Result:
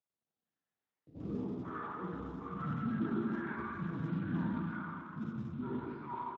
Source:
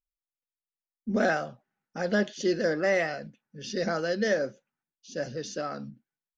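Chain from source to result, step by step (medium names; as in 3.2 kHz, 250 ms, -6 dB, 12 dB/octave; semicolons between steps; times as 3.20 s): drifting ripple filter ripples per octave 1, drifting +0.8 Hz, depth 8 dB; gate -51 dBFS, range -58 dB; saturation -20.5 dBFS, distortion -14 dB; reverse; compression 16:1, threshold -36 dBFS, peak gain reduction 13.5 dB; reverse; three bands offset in time mids, lows, highs 110/450 ms, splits 170/970 Hz; mistuned SSB -350 Hz 440–2200 Hz; in parallel at -3 dB: upward compressor, threshold -44 dBFS; on the sum: Schroeder reverb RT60 2.4 s, combs from 32 ms, DRR -5 dB; trim -4 dB; Speex 13 kbps 16 kHz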